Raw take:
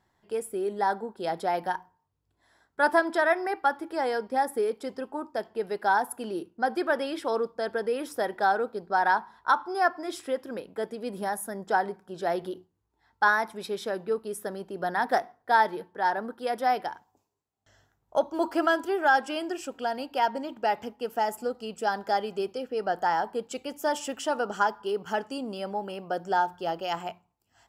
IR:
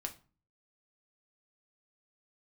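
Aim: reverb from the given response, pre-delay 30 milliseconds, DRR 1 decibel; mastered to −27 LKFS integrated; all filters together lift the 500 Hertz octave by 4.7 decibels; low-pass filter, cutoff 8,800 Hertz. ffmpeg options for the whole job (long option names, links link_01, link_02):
-filter_complex "[0:a]lowpass=8800,equalizer=frequency=500:width_type=o:gain=6,asplit=2[link_01][link_02];[1:a]atrim=start_sample=2205,adelay=30[link_03];[link_02][link_03]afir=irnorm=-1:irlink=0,volume=0dB[link_04];[link_01][link_04]amix=inputs=2:normalize=0,volume=-3.5dB"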